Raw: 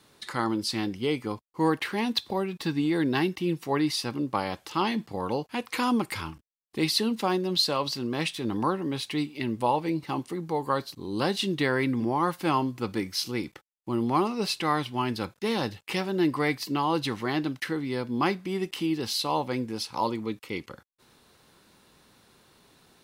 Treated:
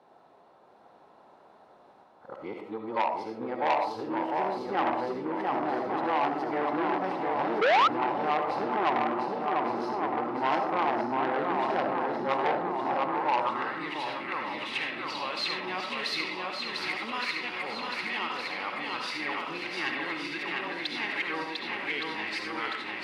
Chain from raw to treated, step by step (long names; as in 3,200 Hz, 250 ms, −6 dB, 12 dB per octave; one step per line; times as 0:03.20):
played backwards from end to start
on a send: feedback echo with a long and a short gap by turns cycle 1,165 ms, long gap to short 1.5 to 1, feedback 56%, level −3.5 dB
on the sum: band-pass filter sweep 770 Hz → 2,200 Hz, 0:12.88–0:14.15
tilt shelving filter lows +3.5 dB, about 910 Hz
comb and all-pass reverb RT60 0.43 s, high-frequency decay 0.7×, pre-delay 30 ms, DRR 3 dB
in parallel at −1 dB: downward compressor, threshold −44 dBFS, peak gain reduction 19.5 dB
on the sum: sound drawn into the spectrogram rise, 0:07.61–0:07.88, 410–1,400 Hz −21 dBFS
saturating transformer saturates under 1,700 Hz
level +3 dB